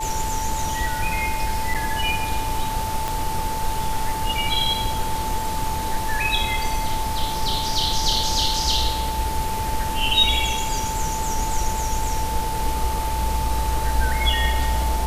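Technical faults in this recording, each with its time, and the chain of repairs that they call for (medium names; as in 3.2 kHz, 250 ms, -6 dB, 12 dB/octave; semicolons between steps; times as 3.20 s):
whine 880 Hz -26 dBFS
1.74–1.75 s: dropout 6.2 ms
3.08 s: pop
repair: de-click; band-stop 880 Hz, Q 30; interpolate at 1.74 s, 6.2 ms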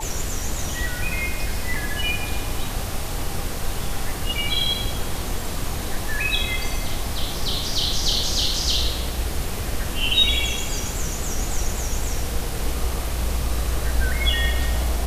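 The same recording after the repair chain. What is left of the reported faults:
3.08 s: pop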